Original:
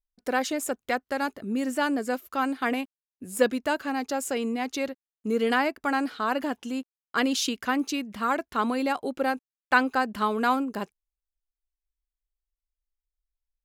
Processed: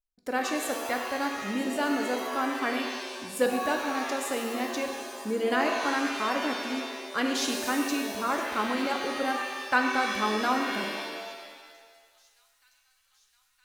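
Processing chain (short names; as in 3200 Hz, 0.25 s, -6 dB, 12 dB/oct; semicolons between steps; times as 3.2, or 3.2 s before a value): thin delay 0.965 s, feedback 71%, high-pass 4400 Hz, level -18 dB; shimmer reverb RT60 1.4 s, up +7 st, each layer -2 dB, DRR 3.5 dB; gain -4 dB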